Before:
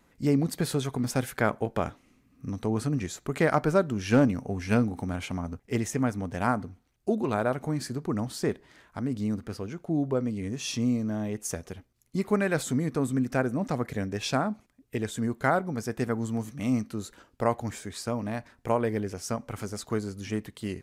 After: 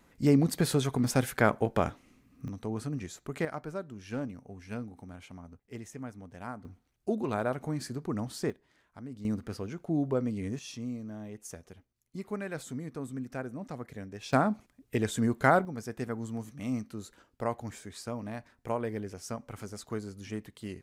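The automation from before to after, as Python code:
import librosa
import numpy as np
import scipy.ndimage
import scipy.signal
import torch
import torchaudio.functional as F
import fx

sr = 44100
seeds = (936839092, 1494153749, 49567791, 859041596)

y = fx.gain(x, sr, db=fx.steps((0.0, 1.0), (2.48, -7.0), (3.45, -14.5), (6.65, -4.0), (8.5, -12.5), (9.25, -2.0), (10.59, -11.0), (14.33, 1.5), (15.65, -6.5)))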